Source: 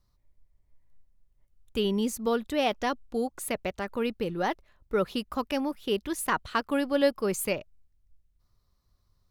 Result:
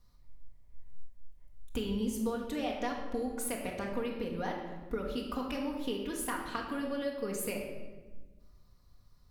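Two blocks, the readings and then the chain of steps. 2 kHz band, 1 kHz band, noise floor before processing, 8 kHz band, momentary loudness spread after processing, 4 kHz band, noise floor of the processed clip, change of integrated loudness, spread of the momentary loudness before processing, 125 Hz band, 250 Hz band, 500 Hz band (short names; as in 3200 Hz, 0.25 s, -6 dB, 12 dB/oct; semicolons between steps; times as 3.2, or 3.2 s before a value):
-8.0 dB, -8.0 dB, -71 dBFS, -4.0 dB, 6 LU, -8.0 dB, -60 dBFS, -6.5 dB, 7 LU, -4.0 dB, -5.0 dB, -8.0 dB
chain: compressor 12:1, threshold -38 dBFS, peak gain reduction 20.5 dB; shoebox room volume 940 m³, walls mixed, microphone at 1.8 m; gain +2.5 dB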